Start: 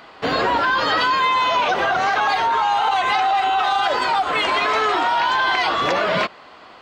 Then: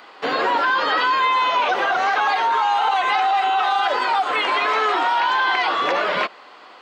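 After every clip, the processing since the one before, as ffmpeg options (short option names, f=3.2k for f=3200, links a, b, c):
-filter_complex "[0:a]acrossover=split=3800[a][b];[b]acompressor=threshold=-39dB:ratio=4:attack=1:release=60[c];[a][c]amix=inputs=2:normalize=0,highpass=320,bandreject=f=650:w=15"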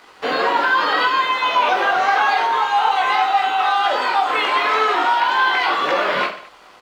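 -af "aeval=exprs='sgn(val(0))*max(abs(val(0))-0.00335,0)':c=same,aecho=1:1:20|48|87.2|142.1|218.9:0.631|0.398|0.251|0.158|0.1"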